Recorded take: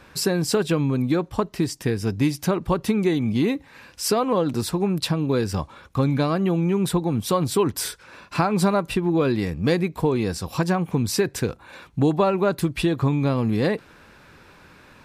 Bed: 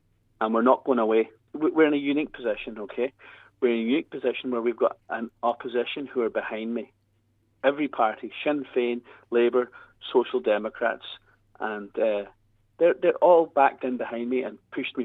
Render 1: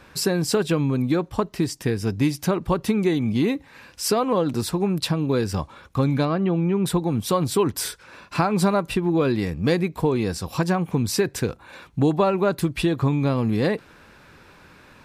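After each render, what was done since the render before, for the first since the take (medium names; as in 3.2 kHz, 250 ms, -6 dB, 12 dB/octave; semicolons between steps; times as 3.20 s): 6.25–6.86 s: distance through air 170 m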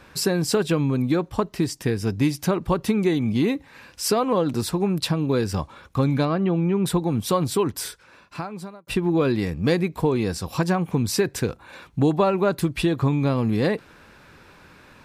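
7.36–8.87 s: fade out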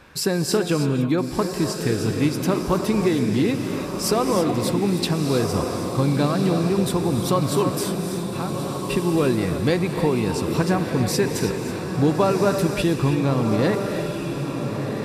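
echo that smears into a reverb 1370 ms, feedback 52%, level -6.5 dB; gated-style reverb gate 350 ms rising, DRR 6.5 dB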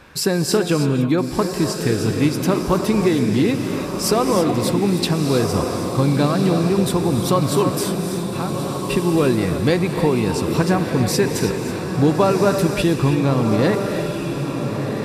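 trim +3 dB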